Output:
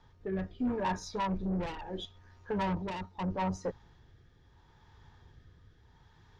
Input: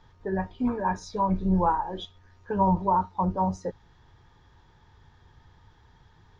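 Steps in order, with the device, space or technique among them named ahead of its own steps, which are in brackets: overdriven rotary cabinet (valve stage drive 26 dB, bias 0.3; rotary cabinet horn 0.75 Hz)

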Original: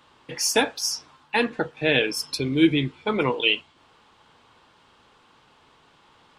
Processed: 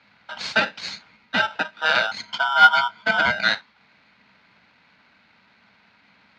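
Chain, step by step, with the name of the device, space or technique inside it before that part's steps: ring modulator pedal into a guitar cabinet (polarity switched at an audio rate 1.1 kHz; cabinet simulation 99–4400 Hz, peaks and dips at 200 Hz +8 dB, 360 Hz -7 dB, 950 Hz +5 dB, 1.5 kHz +7 dB, 2.5 kHz +4 dB, 4.1 kHz +3 dB); 2.18–3.33 s: rippled EQ curve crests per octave 1.8, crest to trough 10 dB; trim -2.5 dB

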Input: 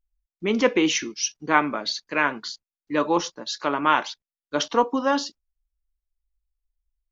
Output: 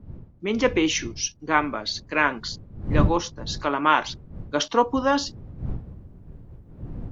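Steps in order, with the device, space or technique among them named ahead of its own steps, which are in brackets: smartphone video outdoors (wind noise 130 Hz; level rider gain up to 12 dB; trim -4.5 dB; AAC 128 kbps 44.1 kHz)

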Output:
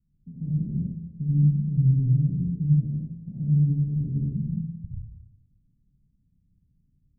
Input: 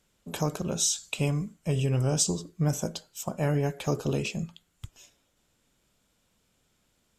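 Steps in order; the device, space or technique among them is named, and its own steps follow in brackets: club heard from the street (peak limiter -22.5 dBFS, peak gain reduction 10 dB; low-pass 190 Hz 24 dB/octave; reverberation RT60 1.0 s, pre-delay 59 ms, DRR -6.5 dB); trim +3 dB

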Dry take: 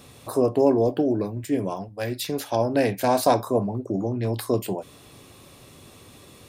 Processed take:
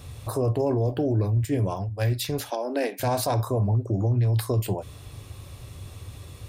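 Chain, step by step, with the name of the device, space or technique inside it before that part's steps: car stereo with a boomy subwoofer (resonant low shelf 140 Hz +13.5 dB, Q 1.5; peak limiter -16 dBFS, peak gain reduction 8 dB); 2.50–3.00 s: steep high-pass 240 Hz 48 dB/octave

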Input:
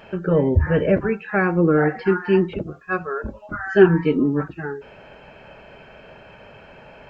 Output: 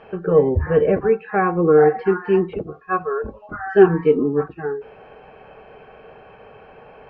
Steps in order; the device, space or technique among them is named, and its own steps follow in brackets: inside a cardboard box (low-pass 3.1 kHz 12 dB/octave; small resonant body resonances 450/760/1100 Hz, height 12 dB, ringing for 45 ms); trim -3.5 dB

